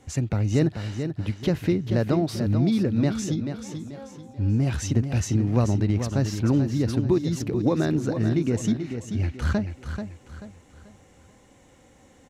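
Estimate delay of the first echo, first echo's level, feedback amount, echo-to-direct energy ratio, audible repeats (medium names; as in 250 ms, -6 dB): 436 ms, -8.0 dB, 36%, -7.5 dB, 4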